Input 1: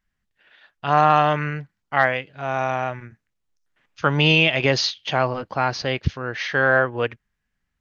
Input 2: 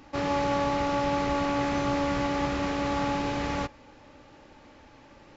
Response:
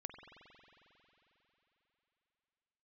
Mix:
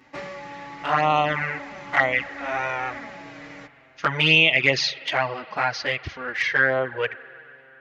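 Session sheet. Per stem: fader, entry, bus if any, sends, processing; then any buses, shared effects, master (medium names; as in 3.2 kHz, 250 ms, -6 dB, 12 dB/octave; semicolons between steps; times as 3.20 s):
-1.0 dB, 0.00 s, send -8 dB, bass shelf 480 Hz -5 dB
-2.5 dB, 0.00 s, send -8 dB, auto duck -12 dB, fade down 0.25 s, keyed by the first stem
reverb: on, RT60 3.7 s, pre-delay 45 ms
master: high-pass 120 Hz 6 dB/octave; peaking EQ 2 kHz +10 dB 0.5 oct; touch-sensitive flanger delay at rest 8.1 ms, full sweep at -10.5 dBFS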